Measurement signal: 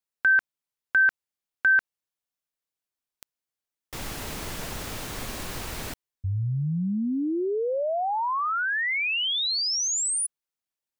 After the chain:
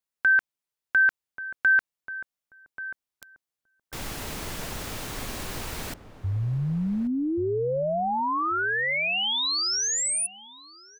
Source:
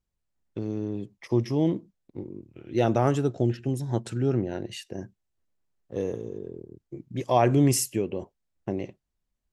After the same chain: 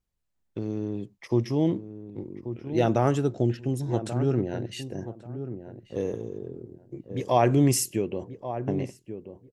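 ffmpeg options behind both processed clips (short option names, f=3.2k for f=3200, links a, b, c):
-filter_complex "[0:a]asplit=2[a][b];[b]adelay=1135,lowpass=f=900:p=1,volume=-10dB,asplit=2[c][d];[d]adelay=1135,lowpass=f=900:p=1,volume=0.24,asplit=2[e][f];[f]adelay=1135,lowpass=f=900:p=1,volume=0.24[g];[a][c][e][g]amix=inputs=4:normalize=0"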